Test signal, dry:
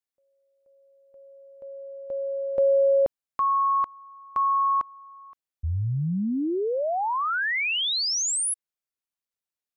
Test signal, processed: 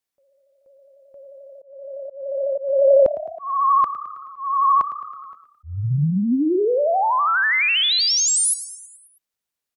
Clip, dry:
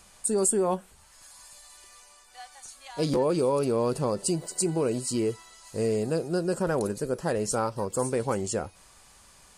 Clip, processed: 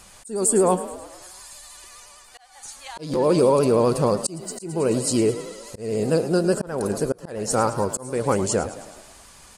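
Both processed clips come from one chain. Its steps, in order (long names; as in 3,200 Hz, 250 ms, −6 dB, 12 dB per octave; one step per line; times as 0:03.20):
echo with shifted repeats 107 ms, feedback 58%, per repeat +34 Hz, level −14 dB
tape wow and flutter 12 Hz 54 cents
volume swells 339 ms
level +7 dB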